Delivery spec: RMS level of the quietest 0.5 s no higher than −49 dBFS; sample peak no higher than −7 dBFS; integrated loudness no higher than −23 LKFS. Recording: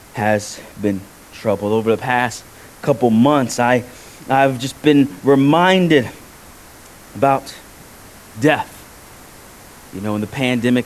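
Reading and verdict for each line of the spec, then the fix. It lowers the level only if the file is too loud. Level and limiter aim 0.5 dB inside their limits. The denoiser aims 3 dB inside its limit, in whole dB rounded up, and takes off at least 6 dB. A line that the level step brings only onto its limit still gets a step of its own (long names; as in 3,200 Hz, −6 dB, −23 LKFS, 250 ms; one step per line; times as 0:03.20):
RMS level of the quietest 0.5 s −41 dBFS: out of spec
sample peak −1.5 dBFS: out of spec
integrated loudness −16.5 LKFS: out of spec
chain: broadband denoise 6 dB, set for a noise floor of −41 dBFS
level −7 dB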